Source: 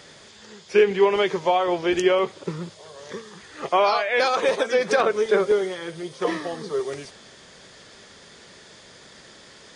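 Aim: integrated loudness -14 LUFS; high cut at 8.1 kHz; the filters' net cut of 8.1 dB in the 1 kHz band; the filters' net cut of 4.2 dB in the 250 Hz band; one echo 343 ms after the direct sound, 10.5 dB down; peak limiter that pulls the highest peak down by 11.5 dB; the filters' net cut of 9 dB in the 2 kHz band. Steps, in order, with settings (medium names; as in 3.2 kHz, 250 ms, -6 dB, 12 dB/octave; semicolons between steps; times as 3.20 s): low-pass 8.1 kHz; peaking EQ 250 Hz -6.5 dB; peaking EQ 1 kHz -9 dB; peaking EQ 2 kHz -8.5 dB; peak limiter -22 dBFS; delay 343 ms -10.5 dB; trim +17.5 dB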